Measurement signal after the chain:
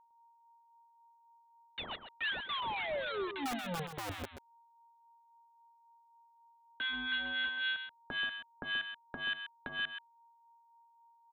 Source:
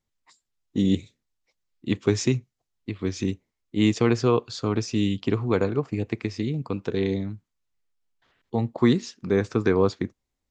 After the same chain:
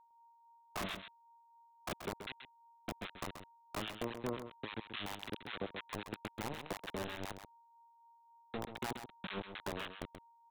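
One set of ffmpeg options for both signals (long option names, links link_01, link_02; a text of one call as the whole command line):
ffmpeg -i in.wav -filter_complex "[0:a]afftdn=noise_reduction=14:noise_floor=-46,equalizer=frequency=125:width_type=o:width=0.33:gain=-11,equalizer=frequency=200:width_type=o:width=0.33:gain=4,equalizer=frequency=315:width_type=o:width=0.33:gain=-7,equalizer=frequency=1250:width_type=o:width=0.33:gain=-11,equalizer=frequency=2000:width_type=o:width=0.33:gain=-12,equalizer=frequency=3150:width_type=o:width=0.33:gain=6,acompressor=threshold=-36dB:ratio=16,aresample=8000,acrusher=bits=5:mix=0:aa=0.000001,aresample=44100,aeval=exprs='val(0)+0.001*sin(2*PI*930*n/s)':channel_layout=same,acrossover=split=1100[link_01][link_02];[link_01]aeval=exprs='val(0)*(1-1/2+1/2*cos(2*PI*3.7*n/s))':channel_layout=same[link_03];[link_02]aeval=exprs='val(0)*(1-1/2-1/2*cos(2*PI*3.7*n/s))':channel_layout=same[link_04];[link_03][link_04]amix=inputs=2:normalize=0,acrossover=split=380[link_05][link_06];[link_05]aeval=exprs='(mod(59.6*val(0)+1,2)-1)/59.6':channel_layout=same[link_07];[link_07][link_06]amix=inputs=2:normalize=0,aecho=1:1:131:0.355,volume=2dB" out.wav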